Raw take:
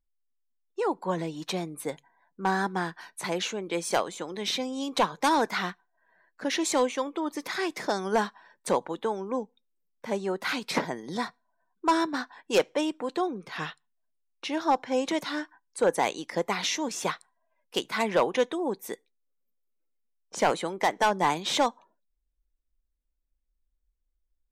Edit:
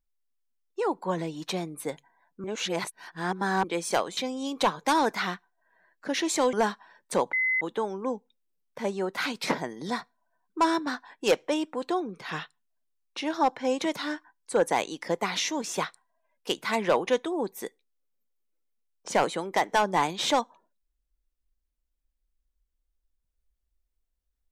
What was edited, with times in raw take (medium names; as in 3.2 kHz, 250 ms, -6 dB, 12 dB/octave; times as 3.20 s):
2.44–3.64 s: reverse
4.17–4.53 s: delete
6.89–8.08 s: delete
8.88 s: add tone 2.04 kHz -22.5 dBFS 0.28 s